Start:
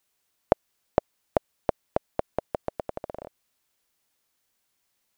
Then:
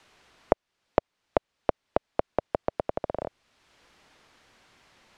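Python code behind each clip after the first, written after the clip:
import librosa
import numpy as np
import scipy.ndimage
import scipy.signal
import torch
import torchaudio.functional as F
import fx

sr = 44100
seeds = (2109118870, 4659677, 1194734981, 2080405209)

y = scipy.signal.sosfilt(scipy.signal.butter(2, 4500.0, 'lowpass', fs=sr, output='sos'), x)
y = fx.band_squash(y, sr, depth_pct=70)
y = y * 10.0 ** (1.5 / 20.0)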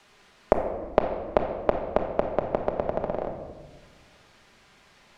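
y = fx.room_shoebox(x, sr, seeds[0], volume_m3=1200.0, walls='mixed', distance_m=1.3)
y = y * 10.0 ** (1.5 / 20.0)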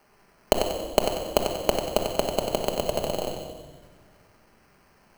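y = scipy.signal.medfilt(x, 15)
y = fx.sample_hold(y, sr, seeds[1], rate_hz=3600.0, jitter_pct=0)
y = fx.echo_feedback(y, sr, ms=94, feedback_pct=41, wet_db=-6.5)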